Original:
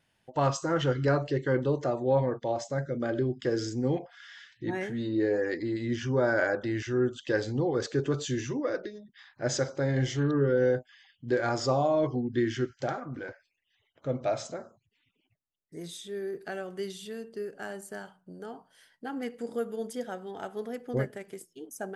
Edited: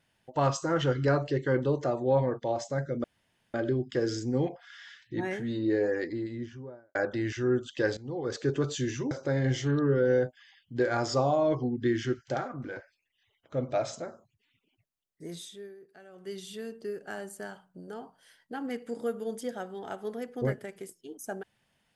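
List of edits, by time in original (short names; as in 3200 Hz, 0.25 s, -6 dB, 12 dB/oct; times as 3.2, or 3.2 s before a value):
3.04 insert room tone 0.50 s
5.32–6.45 studio fade out
7.47–7.98 fade in linear, from -17.5 dB
8.61–9.63 cut
15.88–17 dip -16 dB, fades 0.39 s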